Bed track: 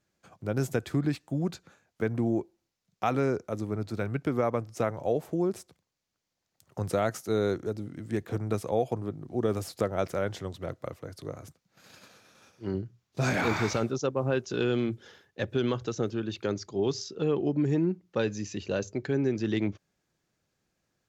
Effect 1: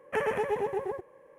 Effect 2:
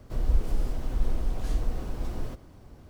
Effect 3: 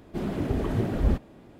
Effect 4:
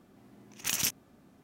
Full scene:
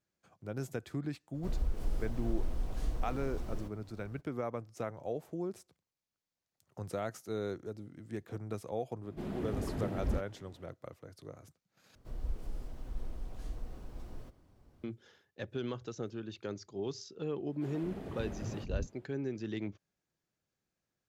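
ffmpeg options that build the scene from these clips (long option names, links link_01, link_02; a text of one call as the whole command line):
ffmpeg -i bed.wav -i cue0.wav -i cue1.wav -i cue2.wav -filter_complex "[2:a]asplit=2[link_01][link_02];[3:a]asplit=2[link_03][link_04];[0:a]volume=-10dB[link_05];[link_01]alimiter=limit=-16dB:level=0:latency=1:release=104[link_06];[link_03]acontrast=84[link_07];[link_04]acrossover=split=280[link_08][link_09];[link_08]adelay=220[link_10];[link_10][link_09]amix=inputs=2:normalize=0[link_11];[link_05]asplit=2[link_12][link_13];[link_12]atrim=end=11.954[link_14];[link_02]atrim=end=2.89,asetpts=PTS-STARTPTS,volume=-13.5dB[link_15];[link_13]atrim=start=14.836[link_16];[link_06]atrim=end=2.89,asetpts=PTS-STARTPTS,volume=-7dB,afade=type=in:duration=0.02,afade=type=out:start_time=2.87:duration=0.02,adelay=1330[link_17];[link_07]atrim=end=1.59,asetpts=PTS-STARTPTS,volume=-16.5dB,afade=type=in:duration=0.004:curve=hsin,afade=type=out:start_time=1.586:duration=0.004:curve=hsin,adelay=9030[link_18];[link_11]atrim=end=1.59,asetpts=PTS-STARTPTS,volume=-13dB,afade=type=in:duration=0.004:curve=hsin,afade=type=out:start_time=1.586:duration=0.004:curve=hsin,adelay=17470[link_19];[link_14][link_15]acrossfade=duration=0.004:curve1=hsin:curve2=hsin[link_20];[link_20][link_16]acrossfade=duration=0.004:curve1=hsin:curve2=hsin[link_21];[link_21][link_17][link_18][link_19]amix=inputs=4:normalize=0" out.wav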